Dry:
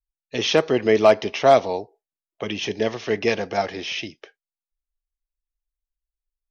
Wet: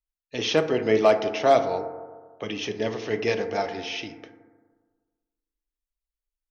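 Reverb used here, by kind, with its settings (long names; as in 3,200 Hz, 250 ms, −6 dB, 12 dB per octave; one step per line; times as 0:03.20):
feedback delay network reverb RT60 1.5 s, low-frequency decay 1×, high-frequency decay 0.25×, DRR 7 dB
level −4.5 dB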